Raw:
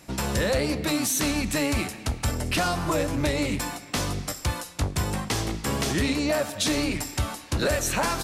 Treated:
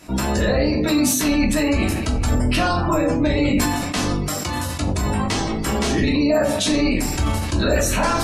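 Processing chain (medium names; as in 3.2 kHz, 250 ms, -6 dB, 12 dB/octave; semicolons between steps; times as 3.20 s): spectral gate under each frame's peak -25 dB strong; simulated room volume 300 m³, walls furnished, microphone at 2.9 m; in parallel at +3 dB: peak limiter -15.5 dBFS, peak gain reduction 9 dB; 4.28–5.04 s: on the sum: high-pass 160 Hz -> 53 Hz; decay stretcher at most 29 dB/s; trim -5.5 dB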